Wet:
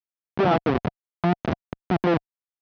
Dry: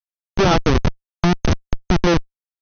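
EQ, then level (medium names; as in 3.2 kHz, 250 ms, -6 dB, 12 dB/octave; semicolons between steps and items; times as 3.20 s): high-pass 160 Hz 12 dB/octave; dynamic bell 710 Hz, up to +6 dB, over -38 dBFS, Q 6; distance through air 370 m; -3.5 dB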